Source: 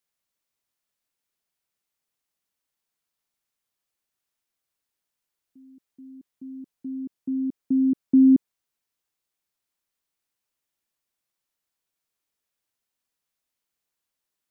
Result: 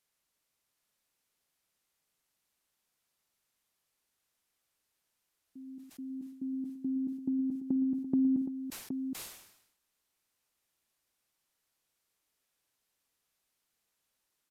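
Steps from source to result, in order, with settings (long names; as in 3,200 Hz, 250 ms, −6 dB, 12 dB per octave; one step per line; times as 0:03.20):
dynamic equaliser 310 Hz, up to −7 dB, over −29 dBFS, Q 0.88
downward compressor 2 to 1, threshold −40 dBFS, peak gain reduction 11 dB
on a send: multi-tap delay 54/114/769 ms −18.5/−15.5/−7.5 dB
on the sum: downsampling to 32,000 Hz
level that may fall only so fast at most 70 dB per second
level +3 dB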